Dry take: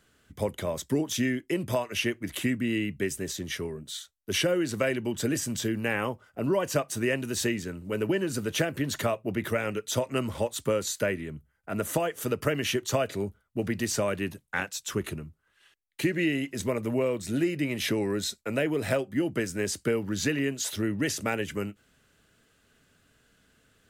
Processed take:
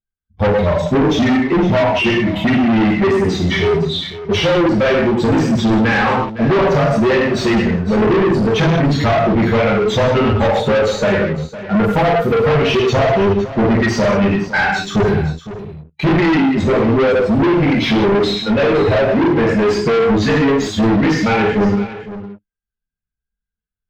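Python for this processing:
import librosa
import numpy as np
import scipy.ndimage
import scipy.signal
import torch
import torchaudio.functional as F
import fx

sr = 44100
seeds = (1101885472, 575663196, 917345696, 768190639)

p1 = fx.bin_expand(x, sr, power=2.0)
p2 = fx.rider(p1, sr, range_db=10, speed_s=0.5)
p3 = p1 + F.gain(torch.from_numpy(p2), -1.0).numpy()
p4 = fx.graphic_eq_31(p3, sr, hz=(160, 400, 800, 10000), db=(9, 6, 8, -9))
p5 = fx.rev_gated(p4, sr, seeds[0], gate_ms=230, shape='falling', drr_db=-5.5)
p6 = fx.leveller(p5, sr, passes=3)
p7 = 10.0 ** (-17.0 / 20.0) * np.tanh(p6 / 10.0 ** (-17.0 / 20.0))
p8 = fx.air_absorb(p7, sr, metres=230.0)
p9 = p8 + 10.0 ** (-14.5 / 20.0) * np.pad(p8, (int(509 * sr / 1000.0), 0))[:len(p8)]
y = F.gain(torch.from_numpy(p9), 6.0).numpy()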